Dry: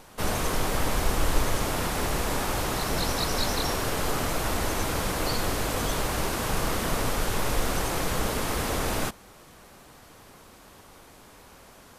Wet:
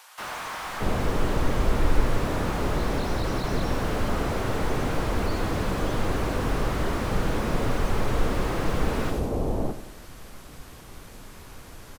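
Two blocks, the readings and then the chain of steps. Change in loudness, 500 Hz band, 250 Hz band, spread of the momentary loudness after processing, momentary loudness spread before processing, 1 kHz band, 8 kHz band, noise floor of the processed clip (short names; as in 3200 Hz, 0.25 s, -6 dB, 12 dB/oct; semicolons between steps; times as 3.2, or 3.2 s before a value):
0.0 dB, +2.0 dB, +3.5 dB, 19 LU, 2 LU, -0.5 dB, -9.5 dB, -45 dBFS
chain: on a send: feedback echo 92 ms, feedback 46%, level -13 dB; on the sum: added noise brown -47 dBFS; bands offset in time highs, lows 0.62 s, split 790 Hz; slew limiter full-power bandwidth 32 Hz; gain +3.5 dB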